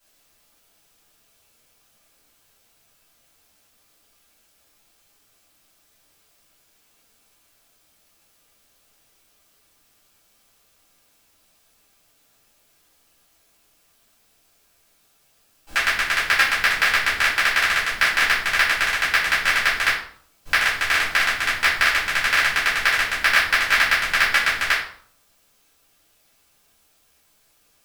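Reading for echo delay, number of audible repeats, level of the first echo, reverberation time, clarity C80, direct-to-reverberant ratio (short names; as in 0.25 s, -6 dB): none, none, none, 0.60 s, 9.0 dB, -10.5 dB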